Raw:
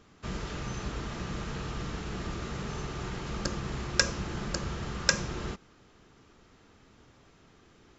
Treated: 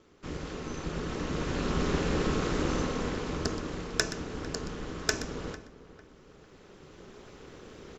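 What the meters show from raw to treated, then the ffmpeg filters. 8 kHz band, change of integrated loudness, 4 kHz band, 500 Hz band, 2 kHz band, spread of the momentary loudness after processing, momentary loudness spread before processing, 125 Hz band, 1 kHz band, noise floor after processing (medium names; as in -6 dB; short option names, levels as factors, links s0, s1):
no reading, +1.0 dB, -2.5 dB, +6.0 dB, -1.5 dB, 20 LU, 9 LU, +0.5 dB, +2.0 dB, -56 dBFS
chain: -filter_complex "[0:a]aeval=exprs='0.668*(cos(1*acos(clip(val(0)/0.668,-1,1)))-cos(1*PI/2))+0.133*(cos(2*acos(clip(val(0)/0.668,-1,1)))-cos(2*PI/2))':c=same,aeval=exprs='val(0)*sin(2*PI*110*n/s)':c=same,equalizer=f=410:t=o:w=0.48:g=8.5,asplit=2[s0][s1];[s1]adelay=450,lowpass=f=2100:p=1,volume=0.158,asplit=2[s2][s3];[s3]adelay=450,lowpass=f=2100:p=1,volume=0.31,asplit=2[s4][s5];[s5]adelay=450,lowpass=f=2100:p=1,volume=0.31[s6];[s2][s4][s6]amix=inputs=3:normalize=0[s7];[s0][s7]amix=inputs=2:normalize=0,dynaudnorm=f=660:g=5:m=4.73,asplit=2[s8][s9];[s9]aecho=0:1:124:0.2[s10];[s8][s10]amix=inputs=2:normalize=0,volume=0.891"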